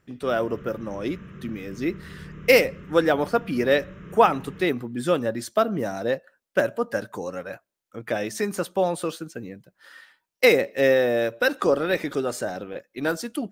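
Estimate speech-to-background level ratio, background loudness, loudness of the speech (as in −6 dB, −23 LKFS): 18.5 dB, −42.5 LKFS, −24.0 LKFS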